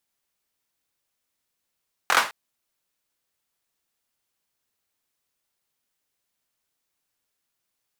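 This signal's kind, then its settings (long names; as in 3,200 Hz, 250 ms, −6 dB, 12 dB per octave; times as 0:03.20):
synth clap length 0.21 s, bursts 4, apart 23 ms, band 1,200 Hz, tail 0.32 s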